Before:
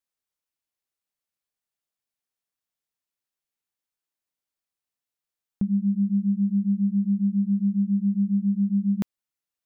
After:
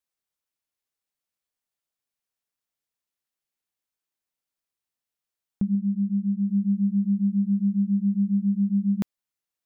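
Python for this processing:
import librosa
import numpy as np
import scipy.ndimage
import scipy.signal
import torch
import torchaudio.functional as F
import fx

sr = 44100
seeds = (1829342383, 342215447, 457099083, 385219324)

y = fx.gaussian_blur(x, sr, sigma=23.0, at=(5.75, 6.5))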